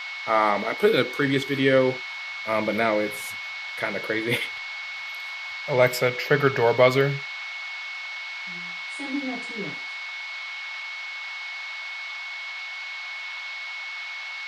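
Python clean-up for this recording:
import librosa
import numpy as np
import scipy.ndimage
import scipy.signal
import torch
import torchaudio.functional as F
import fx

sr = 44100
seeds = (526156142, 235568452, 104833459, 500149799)

y = fx.fix_declick_ar(x, sr, threshold=6.5)
y = fx.notch(y, sr, hz=2200.0, q=30.0)
y = fx.noise_reduce(y, sr, print_start_s=12.59, print_end_s=13.09, reduce_db=30.0)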